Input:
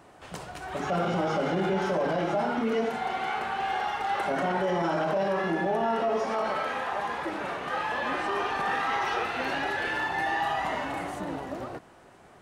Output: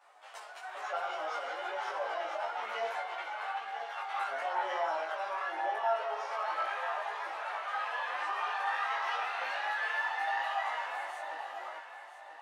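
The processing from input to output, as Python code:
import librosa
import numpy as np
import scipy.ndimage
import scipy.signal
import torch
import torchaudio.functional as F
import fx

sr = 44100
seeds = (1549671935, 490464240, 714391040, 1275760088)

p1 = scipy.signal.sosfilt(scipy.signal.butter(4, 680.0, 'highpass', fs=sr, output='sos'), x)
p2 = fx.high_shelf(p1, sr, hz=4500.0, db=-6.5)
p3 = fx.over_compress(p2, sr, threshold_db=-35.0, ratio=-1.0, at=(2.48, 4.09))
p4 = fx.chorus_voices(p3, sr, voices=2, hz=0.53, base_ms=11, depth_ms=2.4, mix_pct=60)
p5 = fx.doubler(p4, sr, ms=19.0, db=-3)
p6 = p5 + fx.echo_feedback(p5, sr, ms=988, feedback_pct=36, wet_db=-11.0, dry=0)
y = p6 * 10.0 ** (-2.5 / 20.0)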